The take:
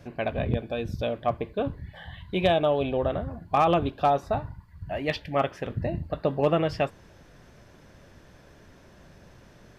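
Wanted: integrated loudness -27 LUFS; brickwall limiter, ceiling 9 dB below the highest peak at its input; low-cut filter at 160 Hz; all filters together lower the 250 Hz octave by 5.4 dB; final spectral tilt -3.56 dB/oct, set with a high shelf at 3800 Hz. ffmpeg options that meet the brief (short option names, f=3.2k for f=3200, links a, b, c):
-af "highpass=160,equalizer=f=250:t=o:g=-6.5,highshelf=f=3.8k:g=6,volume=5dB,alimiter=limit=-14dB:level=0:latency=1"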